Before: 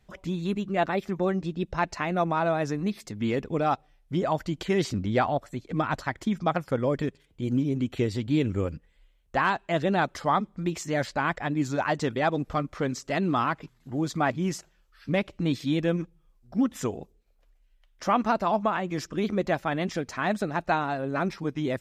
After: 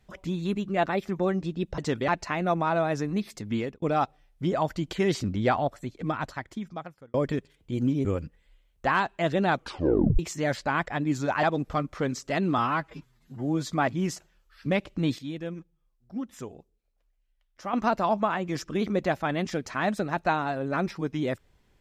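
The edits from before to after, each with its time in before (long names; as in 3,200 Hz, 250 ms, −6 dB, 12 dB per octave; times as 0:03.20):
0:03.23–0:03.52: fade out
0:05.46–0:06.84: fade out
0:07.75–0:08.55: remove
0:10.04: tape stop 0.65 s
0:11.93–0:12.23: move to 0:01.78
0:13.38–0:14.13: time-stretch 1.5×
0:15.61–0:18.16: clip gain −9.5 dB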